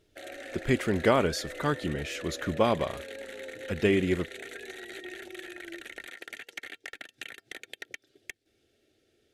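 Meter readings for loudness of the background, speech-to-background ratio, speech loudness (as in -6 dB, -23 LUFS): -42.0 LUFS, 13.5 dB, -28.5 LUFS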